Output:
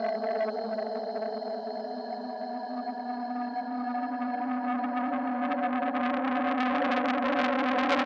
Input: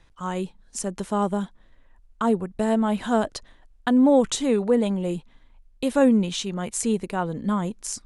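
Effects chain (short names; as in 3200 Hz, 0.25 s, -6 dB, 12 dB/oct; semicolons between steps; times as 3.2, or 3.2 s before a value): spectral contrast raised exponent 2.5; upward compressor, threshold -22 dBFS; Paulstretch 16×, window 1.00 s, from 3.42; speaker cabinet 310–3200 Hz, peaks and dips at 430 Hz +7 dB, 770 Hz +8 dB, 1200 Hz -8 dB; on a send: echo 0.306 s -5 dB; on the sum: core saturation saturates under 2100 Hz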